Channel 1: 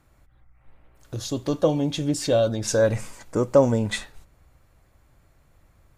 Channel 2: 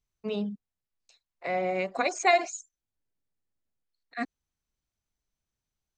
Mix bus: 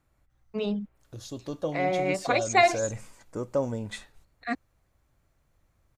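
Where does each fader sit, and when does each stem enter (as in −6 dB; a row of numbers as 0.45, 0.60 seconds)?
−10.5, +2.0 decibels; 0.00, 0.30 seconds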